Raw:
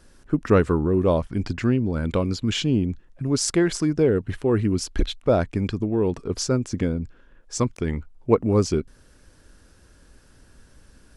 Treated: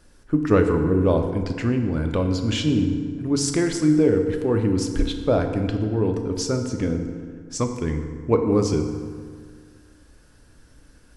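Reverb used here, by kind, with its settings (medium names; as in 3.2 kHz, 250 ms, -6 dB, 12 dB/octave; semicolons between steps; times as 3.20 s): FDN reverb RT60 1.9 s, low-frequency decay 1.1×, high-frequency decay 0.6×, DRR 4.5 dB; trim -1.5 dB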